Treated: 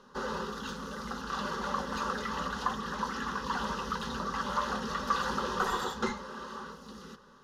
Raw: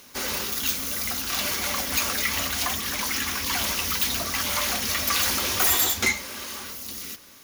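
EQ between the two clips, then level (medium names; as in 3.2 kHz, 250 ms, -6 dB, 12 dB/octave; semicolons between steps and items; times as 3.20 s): low-pass 2 kHz 12 dB/octave; static phaser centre 450 Hz, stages 8; +2.0 dB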